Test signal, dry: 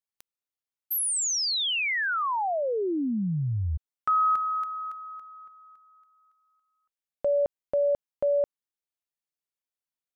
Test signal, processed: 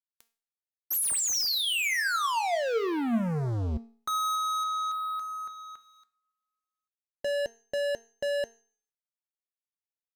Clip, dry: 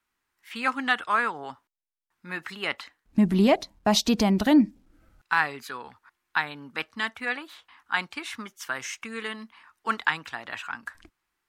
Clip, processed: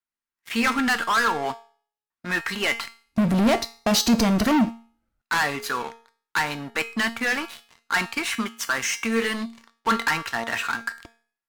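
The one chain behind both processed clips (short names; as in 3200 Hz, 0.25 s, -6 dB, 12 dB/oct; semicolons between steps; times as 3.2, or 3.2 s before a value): dynamic EQ 3500 Hz, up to -7 dB, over -52 dBFS, Q 6.2; sample leveller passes 5; resonator 230 Hz, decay 0.39 s, harmonics all, mix 70%; de-hum 420.2 Hz, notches 30; gain +1.5 dB; Opus 96 kbps 48000 Hz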